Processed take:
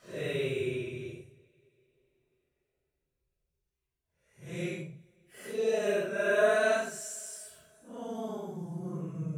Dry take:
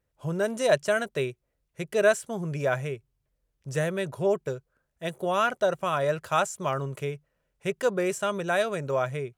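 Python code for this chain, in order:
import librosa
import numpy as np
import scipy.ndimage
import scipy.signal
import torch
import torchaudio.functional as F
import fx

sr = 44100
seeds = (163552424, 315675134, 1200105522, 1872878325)

y = fx.paulstretch(x, sr, seeds[0], factor=6.9, window_s=0.05, from_s=1.14)
y = fx.rev_double_slope(y, sr, seeds[1], early_s=0.34, late_s=3.9, knee_db=-18, drr_db=15.5)
y = F.gain(torch.from_numpy(y), -6.5).numpy()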